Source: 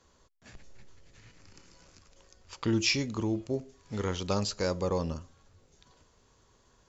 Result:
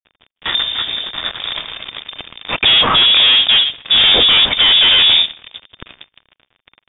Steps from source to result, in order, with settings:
fuzz pedal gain 47 dB, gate −56 dBFS
tape delay 151 ms, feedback 28%, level −24 dB, low-pass 1,400 Hz
voice inversion scrambler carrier 3,600 Hz
level +4 dB

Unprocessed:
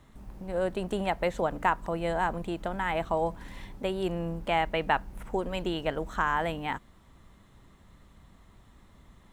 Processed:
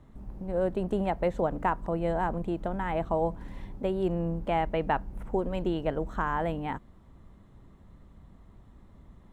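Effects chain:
tilt shelving filter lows +7 dB, about 1,200 Hz
level −3.5 dB

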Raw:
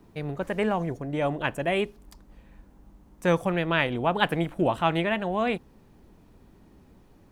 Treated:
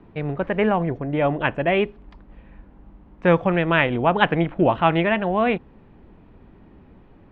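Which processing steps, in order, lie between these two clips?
low-pass filter 3,000 Hz 24 dB per octave
level +6 dB

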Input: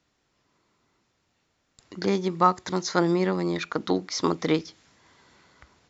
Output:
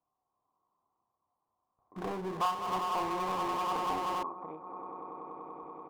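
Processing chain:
adaptive Wiener filter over 15 samples
parametric band 700 Hz −9.5 dB 0.42 octaves
echo that builds up and dies away 96 ms, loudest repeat 8, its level −15.5 dB
downward compressor, threshold −27 dBFS, peak gain reduction 12 dB
formant resonators in series a
double-tracking delay 32 ms −8 dB
0:01.96–0:04.23: power curve on the samples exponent 0.5
level +6.5 dB

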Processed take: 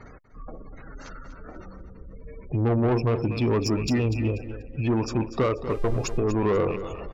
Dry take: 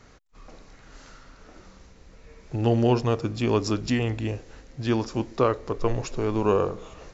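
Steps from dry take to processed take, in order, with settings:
loose part that buzzes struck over −35 dBFS, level −28 dBFS
gate on every frequency bin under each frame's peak −20 dB strong
in parallel at +0.5 dB: downward compressor, threshold −32 dBFS, peak gain reduction 15 dB
on the sum: soft clipping −19.5 dBFS, distortion −11 dB
on a send: repeating echo 243 ms, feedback 26%, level −12.5 dB
0:05.69–0:06.17: on the sum: hum with harmonics 400 Hz, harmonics 36, −49 dBFS −7 dB per octave
level +1.5 dB

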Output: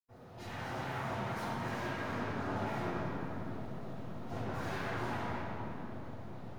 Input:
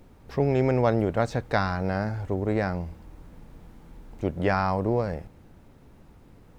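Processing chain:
sub-octave generator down 2 octaves, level +1 dB
noise gate with hold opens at −48 dBFS
Butterworth high-pass 170 Hz 72 dB per octave
parametric band 3,300 Hz +6.5 dB 0.77 octaves
hollow resonant body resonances 460/820 Hz, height 12 dB, ringing for 90 ms
soft clipping −36.5 dBFS, distortion −2 dB
auto-filter notch saw down 2.8 Hz 540–3,700 Hz
full-wave rectification
convolution reverb RT60 3.6 s, pre-delay 77 ms, DRR −60 dB

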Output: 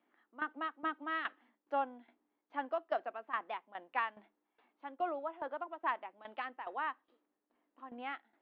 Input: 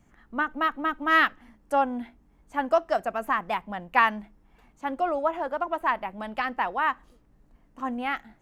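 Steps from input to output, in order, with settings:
elliptic band-pass filter 290–3,700 Hz, stop band 40 dB
shaped tremolo saw down 2.4 Hz, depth 80%
level −8.5 dB

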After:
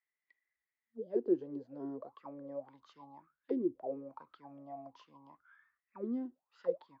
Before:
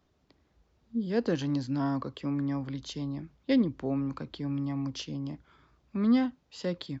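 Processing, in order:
noise reduction from a noise print of the clip's start 8 dB
envelope filter 360–2,000 Hz, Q 19, down, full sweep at −24.5 dBFS
level +10 dB

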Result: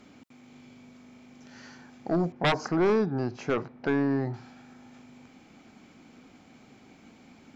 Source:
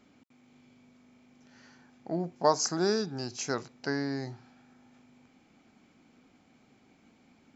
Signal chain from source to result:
0:02.32–0:04.34: low-pass filter 1,600 Hz 12 dB per octave
sine wavefolder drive 13 dB, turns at −10.5 dBFS
level −8.5 dB

